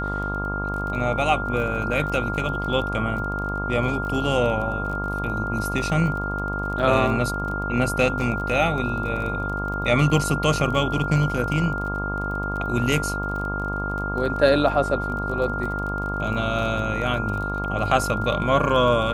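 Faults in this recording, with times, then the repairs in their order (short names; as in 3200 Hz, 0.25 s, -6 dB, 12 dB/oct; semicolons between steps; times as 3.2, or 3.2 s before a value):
buzz 50 Hz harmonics 28 -29 dBFS
crackle 25/s -30 dBFS
tone 1400 Hz -28 dBFS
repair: de-click; de-hum 50 Hz, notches 28; notch 1400 Hz, Q 30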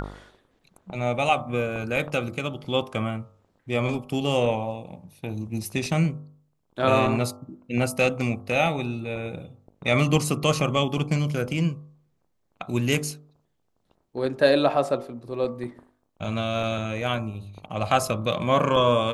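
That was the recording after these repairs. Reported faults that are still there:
none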